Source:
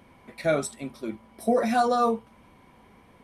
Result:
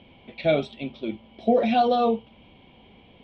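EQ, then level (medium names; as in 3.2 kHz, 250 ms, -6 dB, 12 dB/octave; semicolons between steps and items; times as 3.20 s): resonant low-pass 3.2 kHz, resonance Q 4.8; distance through air 170 m; high-order bell 1.4 kHz -10.5 dB 1.2 oct; +3.0 dB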